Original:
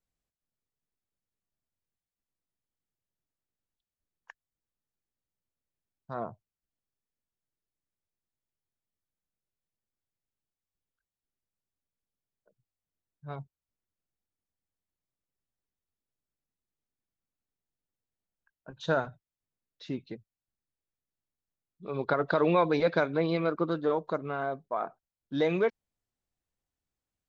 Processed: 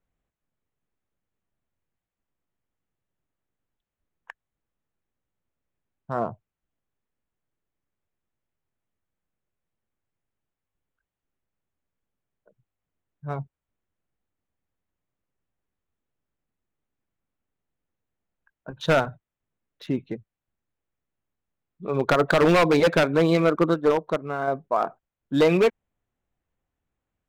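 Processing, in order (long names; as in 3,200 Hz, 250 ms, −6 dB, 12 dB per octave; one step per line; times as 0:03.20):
adaptive Wiener filter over 9 samples
wave folding −20.5 dBFS
0:23.74–0:24.48: expander for the loud parts 1.5 to 1, over −40 dBFS
level +9 dB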